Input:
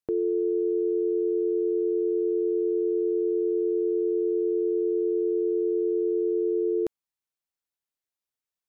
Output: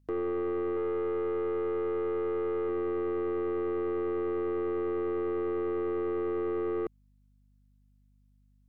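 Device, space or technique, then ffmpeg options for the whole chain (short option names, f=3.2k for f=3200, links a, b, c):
valve amplifier with mains hum: -filter_complex "[0:a]highpass=210,asettb=1/sr,asplit=3[a][b][c];[a]atrim=end=0.744[d];[b]atrim=start=0.74:end=2.69,asetpts=PTS-STARTPTS,afade=t=in:d=0.004:c=qsin,afade=t=out:st=1.946:d=0.004:c=qsin,asplit=2[e][f];[f]adelay=27,volume=-13.5dB[g];[e][g]amix=inputs=2:normalize=0,atrim=end_sample=85995[h];[c]atrim=start=2.686[i];[d][h]acrossfade=d=0.004:c1=hsin:c2=qsin[j];[j][i]acrossfade=d=0.004:c1=qsin:c2=hsin,aeval=exprs='(tanh(25.1*val(0)+0.25)-tanh(0.25))/25.1':c=same,aeval=exprs='val(0)+0.000708*(sin(2*PI*50*n/s)+sin(2*PI*2*50*n/s)/2+sin(2*PI*3*50*n/s)/3+sin(2*PI*4*50*n/s)/4+sin(2*PI*5*50*n/s)/5)':c=same"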